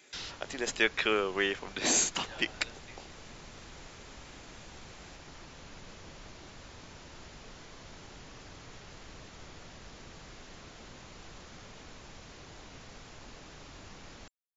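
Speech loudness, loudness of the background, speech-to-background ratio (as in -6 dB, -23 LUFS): -30.5 LUFS, -49.5 LUFS, 19.0 dB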